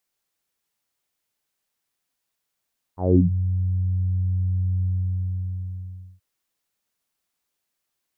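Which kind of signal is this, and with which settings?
subtractive voice saw F#2 24 dB per octave, low-pass 130 Hz, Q 4.7, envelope 3 octaves, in 0.34 s, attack 192 ms, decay 0.11 s, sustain −9 dB, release 1.36 s, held 1.87 s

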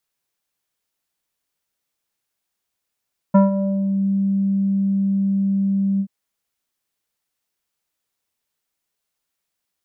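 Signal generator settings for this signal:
subtractive voice square G3 24 dB per octave, low-pass 280 Hz, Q 1.3, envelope 2 octaves, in 0.71 s, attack 12 ms, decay 0.15 s, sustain −11 dB, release 0.07 s, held 2.66 s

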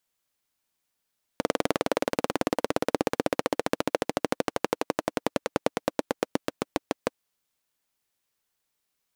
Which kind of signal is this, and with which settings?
pulse-train model of a single-cylinder engine, changing speed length 5.78 s, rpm 2,400, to 700, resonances 300/480 Hz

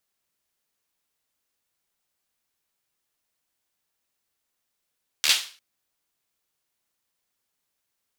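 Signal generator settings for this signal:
synth clap length 0.35 s, bursts 5, apart 13 ms, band 3,400 Hz, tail 0.39 s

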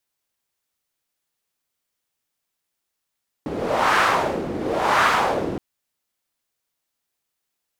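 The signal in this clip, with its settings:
wind from filtered noise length 2.12 s, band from 310 Hz, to 1,300 Hz, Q 1.9, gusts 2, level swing 9.5 dB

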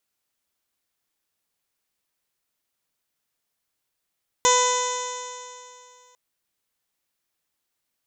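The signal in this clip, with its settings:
stiff-string partials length 1.70 s, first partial 496 Hz, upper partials 4/−10.5/−6/−13/−10/−5/−12.5/−19/−10.5/−6.5/−2/−2.5/−10.5 dB, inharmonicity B 0.0011, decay 2.52 s, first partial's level −21 dB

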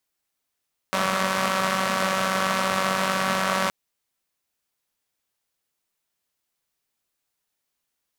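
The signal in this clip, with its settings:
pulse-train model of a four-cylinder engine, steady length 2.77 s, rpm 5,700, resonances 220/600/1,100 Hz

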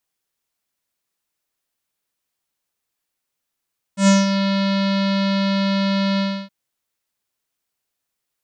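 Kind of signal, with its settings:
subtractive voice square G3 24 dB per octave, low-pass 4,300 Hz, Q 3, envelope 1 octave, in 0.42 s, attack 106 ms, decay 0.18 s, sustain −8 dB, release 0.30 s, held 2.22 s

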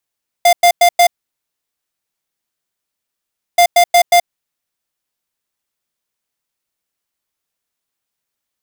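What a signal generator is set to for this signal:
beeps in groups square 699 Hz, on 0.08 s, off 0.10 s, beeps 4, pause 2.51 s, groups 2, −8 dBFS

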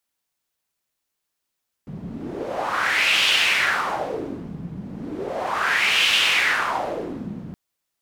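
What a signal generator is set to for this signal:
wind from filtered noise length 5.67 s, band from 170 Hz, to 2,900 Hz, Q 3.5, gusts 2, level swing 16 dB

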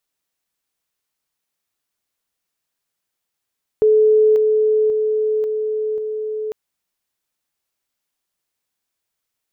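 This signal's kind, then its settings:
level staircase 431 Hz −9.5 dBFS, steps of −3 dB, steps 5, 0.54 s 0.00 s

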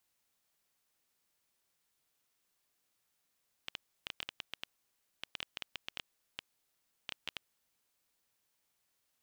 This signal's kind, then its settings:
Geiger counter clicks 6.4 per second −21 dBFS 4.09 s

